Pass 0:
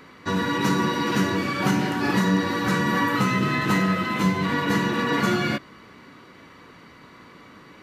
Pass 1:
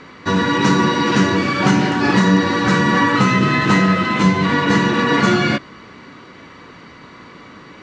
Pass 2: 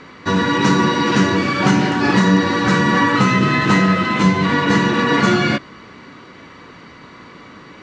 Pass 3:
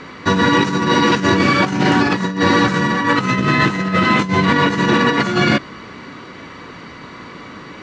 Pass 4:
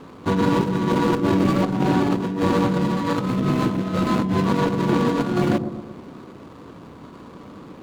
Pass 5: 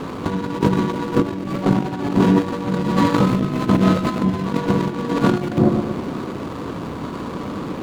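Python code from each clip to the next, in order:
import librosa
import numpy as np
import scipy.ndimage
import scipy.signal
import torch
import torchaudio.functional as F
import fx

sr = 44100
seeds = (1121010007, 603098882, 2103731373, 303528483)

y1 = scipy.signal.sosfilt(scipy.signal.cheby2(4, 40, 12000.0, 'lowpass', fs=sr, output='sos'), x)
y1 = y1 * 10.0 ** (7.5 / 20.0)
y2 = y1
y3 = fx.over_compress(y2, sr, threshold_db=-17.0, ratio=-0.5)
y3 = y3 * 10.0 ** (2.5 / 20.0)
y4 = scipy.ndimage.median_filter(y3, 25, mode='constant')
y4 = fx.high_shelf(y4, sr, hz=5200.0, db=-4.5)
y4 = fx.echo_wet_lowpass(y4, sr, ms=119, feedback_pct=51, hz=650.0, wet_db=-7.5)
y4 = y4 * 10.0 ** (-4.0 / 20.0)
y5 = fx.over_compress(y4, sr, threshold_db=-25.0, ratio=-0.5)
y5 = y5 * 10.0 ** (7.5 / 20.0)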